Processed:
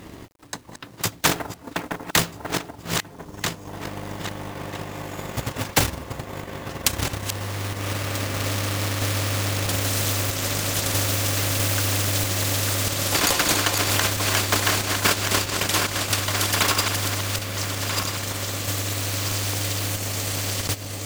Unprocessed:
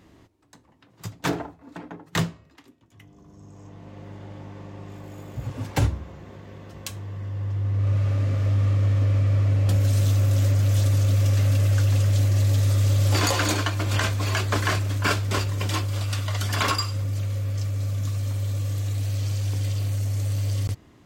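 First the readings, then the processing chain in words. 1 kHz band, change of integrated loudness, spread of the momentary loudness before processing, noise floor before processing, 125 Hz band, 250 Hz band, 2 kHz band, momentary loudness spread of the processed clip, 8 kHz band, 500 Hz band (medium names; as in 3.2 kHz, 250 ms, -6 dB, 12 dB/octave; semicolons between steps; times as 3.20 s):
+5.0 dB, +0.5 dB, 20 LU, -56 dBFS, -7.0 dB, +2.5 dB, +6.5 dB, 13 LU, +11.5 dB, +4.5 dB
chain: backward echo that repeats 644 ms, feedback 47%, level -6.5 dB; transient shaper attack +8 dB, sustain -7 dB; companded quantiser 6-bit; spectrum-flattening compressor 2:1; trim +2 dB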